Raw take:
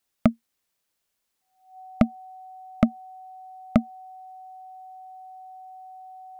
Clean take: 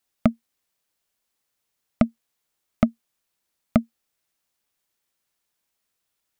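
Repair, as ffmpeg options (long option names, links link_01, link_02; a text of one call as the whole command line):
ffmpeg -i in.wav -af "bandreject=frequency=750:width=30" out.wav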